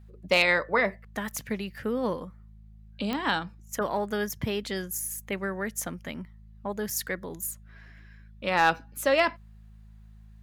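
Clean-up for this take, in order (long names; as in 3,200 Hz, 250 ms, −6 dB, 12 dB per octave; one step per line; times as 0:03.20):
clipped peaks rebuilt −11.5 dBFS
click removal
hum removal 53.3 Hz, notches 4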